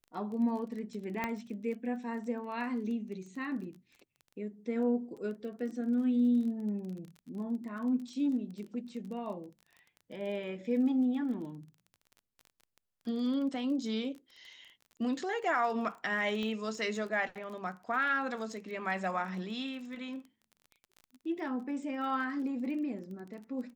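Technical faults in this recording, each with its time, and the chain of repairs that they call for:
crackle 23 per s -42 dBFS
1.24 s: pop -19 dBFS
16.43 s: pop -26 dBFS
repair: de-click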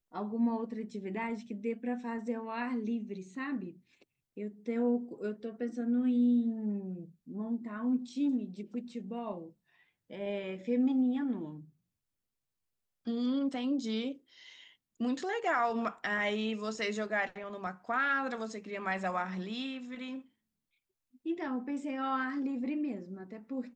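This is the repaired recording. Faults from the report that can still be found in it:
16.43 s: pop

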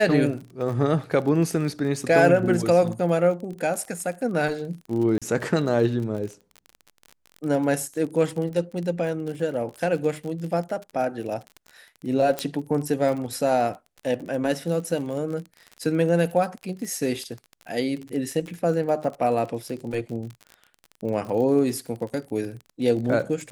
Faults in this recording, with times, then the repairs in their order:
crackle 36 per s -31 dBFS
5.18–5.22 s: dropout 36 ms
12.39 s: pop -9 dBFS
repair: de-click; interpolate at 5.18 s, 36 ms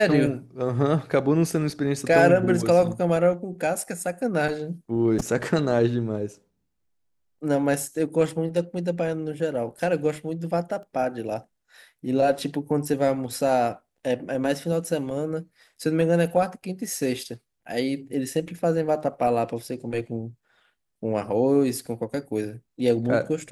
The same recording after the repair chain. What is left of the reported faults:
12.39 s: pop

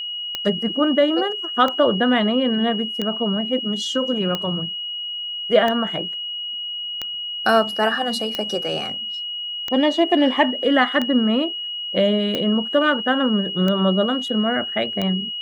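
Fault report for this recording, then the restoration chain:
tick 45 rpm -10 dBFS
whine 2.9 kHz -26 dBFS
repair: de-click; band-stop 2.9 kHz, Q 30

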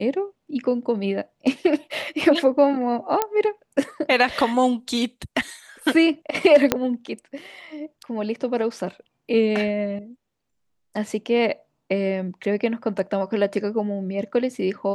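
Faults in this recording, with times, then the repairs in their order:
3.22 s: pop -6 dBFS
6.72 s: pop -2 dBFS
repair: de-click

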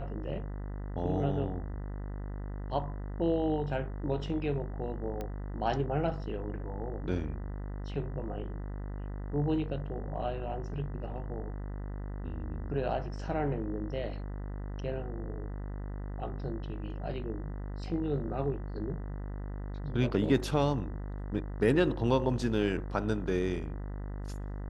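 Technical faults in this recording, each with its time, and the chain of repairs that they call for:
buzz 50 Hz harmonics 40 -38 dBFS
5.21 s: pop -24 dBFS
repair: de-click; de-hum 50 Hz, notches 40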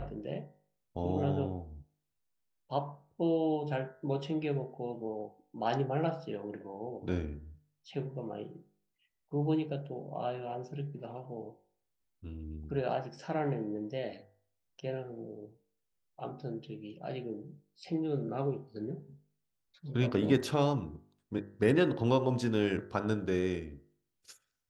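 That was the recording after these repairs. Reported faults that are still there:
nothing left

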